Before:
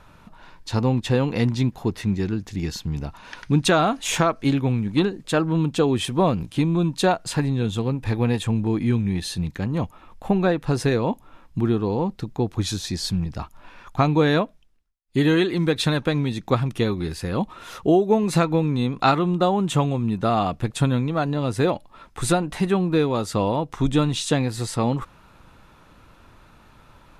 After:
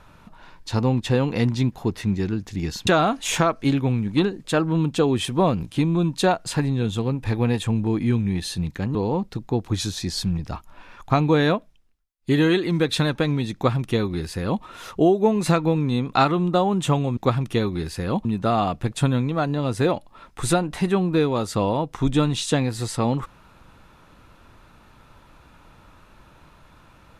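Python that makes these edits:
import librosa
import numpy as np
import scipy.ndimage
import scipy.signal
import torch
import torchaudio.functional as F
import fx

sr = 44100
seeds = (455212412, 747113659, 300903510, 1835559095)

y = fx.edit(x, sr, fx.cut(start_s=2.87, length_s=0.8),
    fx.cut(start_s=9.75, length_s=2.07),
    fx.duplicate(start_s=16.42, length_s=1.08, to_s=20.04), tone=tone)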